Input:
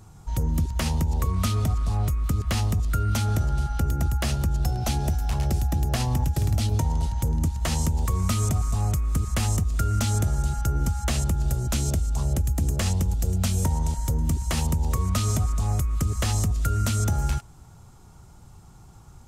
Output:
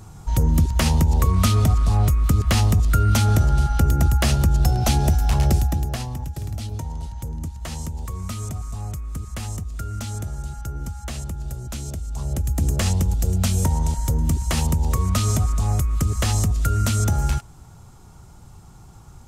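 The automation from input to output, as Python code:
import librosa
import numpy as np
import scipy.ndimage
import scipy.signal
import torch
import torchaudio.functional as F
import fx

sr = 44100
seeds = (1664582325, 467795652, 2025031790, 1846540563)

y = fx.gain(x, sr, db=fx.line((5.53, 6.5), (6.13, -6.0), (11.97, -6.0), (12.64, 3.5)))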